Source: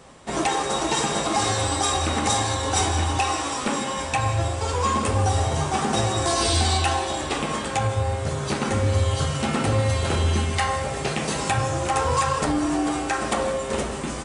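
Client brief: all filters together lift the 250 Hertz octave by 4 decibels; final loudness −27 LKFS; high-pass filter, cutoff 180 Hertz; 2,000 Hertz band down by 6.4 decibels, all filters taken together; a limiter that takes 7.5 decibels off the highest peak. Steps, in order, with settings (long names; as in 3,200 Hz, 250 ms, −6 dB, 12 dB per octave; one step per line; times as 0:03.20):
high-pass filter 180 Hz
parametric band 250 Hz +6.5 dB
parametric band 2,000 Hz −8.5 dB
level −0.5 dB
brickwall limiter −17.5 dBFS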